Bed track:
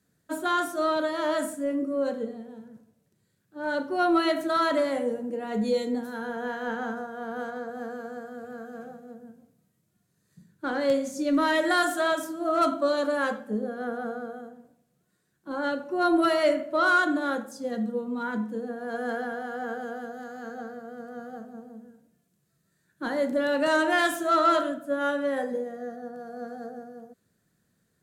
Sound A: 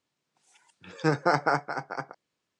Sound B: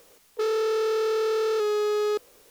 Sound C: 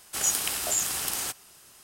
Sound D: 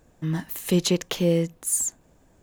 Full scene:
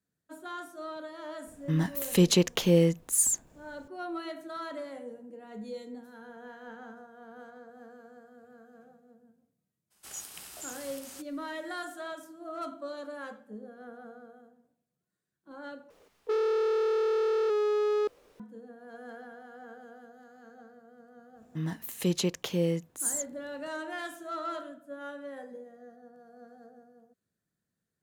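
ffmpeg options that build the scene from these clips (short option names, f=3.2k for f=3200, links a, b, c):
-filter_complex "[4:a]asplit=2[a][b];[0:a]volume=-14.5dB[c];[3:a]alimiter=limit=-10.5dB:level=0:latency=1:release=144[d];[2:a]lowpass=f=1.8k:p=1[e];[b]highpass=65[f];[c]asplit=2[g][h];[g]atrim=end=15.904[i];[e]atrim=end=2.5,asetpts=PTS-STARTPTS,volume=-2dB[j];[h]atrim=start=18.396[k];[a]atrim=end=2.42,asetpts=PTS-STARTPTS,volume=-0.5dB,afade=t=in:d=0.004:c=hsin,afade=t=out:st=2.416:d=0.004:c=hsin,adelay=1460[l];[d]atrim=end=1.83,asetpts=PTS-STARTPTS,volume=-16dB,afade=t=in:d=0.02,afade=t=out:st=1.81:d=0.02,adelay=9900[m];[f]atrim=end=2.42,asetpts=PTS-STARTPTS,volume=-6.5dB,afade=t=in:d=0.1,afade=t=out:st=2.32:d=0.1,adelay=21330[n];[i][j]acrossfade=d=0.004:c1=hsin:c2=hsin[o];[o][k]acrossfade=d=0.004:c1=hsin:c2=hsin[p];[p][l][m][n]amix=inputs=4:normalize=0"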